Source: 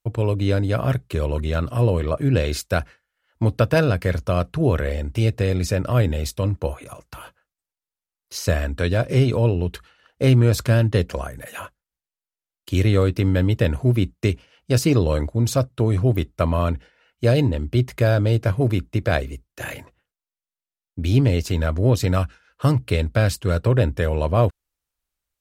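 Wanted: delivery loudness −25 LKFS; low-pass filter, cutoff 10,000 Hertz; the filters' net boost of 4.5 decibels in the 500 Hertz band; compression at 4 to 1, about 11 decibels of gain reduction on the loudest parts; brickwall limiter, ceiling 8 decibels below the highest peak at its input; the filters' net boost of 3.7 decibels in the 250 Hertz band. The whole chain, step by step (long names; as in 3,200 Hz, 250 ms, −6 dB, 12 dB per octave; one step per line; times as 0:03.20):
low-pass filter 10,000 Hz
parametric band 250 Hz +3.5 dB
parametric band 500 Hz +4.5 dB
downward compressor 4 to 1, threshold −23 dBFS
level +4 dB
brickwall limiter −12.5 dBFS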